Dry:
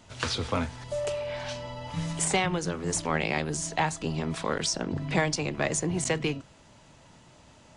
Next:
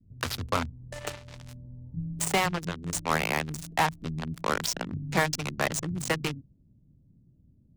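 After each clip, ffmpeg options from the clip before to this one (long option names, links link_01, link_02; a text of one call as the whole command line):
ffmpeg -i in.wav -filter_complex "[0:a]adynamicequalizer=threshold=0.00891:dfrequency=1200:dqfactor=1.2:tfrequency=1200:tqfactor=1.2:attack=5:release=100:ratio=0.375:range=3:mode=boostabove:tftype=bell,acrossover=split=270[link_01][link_02];[link_02]acrusher=bits=3:mix=0:aa=0.5[link_03];[link_01][link_03]amix=inputs=2:normalize=0,volume=-1dB" out.wav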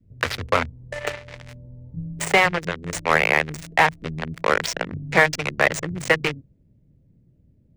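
ffmpeg -i in.wav -af "equalizer=frequency=250:width_type=o:width=1:gain=-3,equalizer=frequency=500:width_type=o:width=1:gain=8,equalizer=frequency=2000:width_type=o:width=1:gain=10,equalizer=frequency=16000:width_type=o:width=1:gain=-9,volume=3dB" out.wav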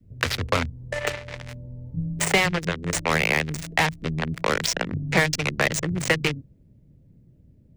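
ffmpeg -i in.wav -filter_complex "[0:a]acrossover=split=310|3000[link_01][link_02][link_03];[link_02]acompressor=threshold=-28dB:ratio=3[link_04];[link_01][link_04][link_03]amix=inputs=3:normalize=0,volume=3.5dB" out.wav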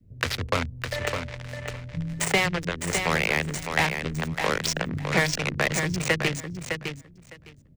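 ffmpeg -i in.wav -af "aecho=1:1:608|1216|1824:0.473|0.071|0.0106,volume=-2.5dB" out.wav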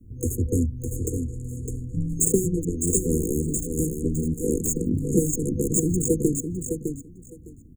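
ffmpeg -i in.wav -af "afftfilt=real='re*(1-between(b*sr/4096,500,6500))':imag='im*(1-between(b*sr/4096,500,6500))':win_size=4096:overlap=0.75,aecho=1:1:3.4:0.51,volume=8dB" out.wav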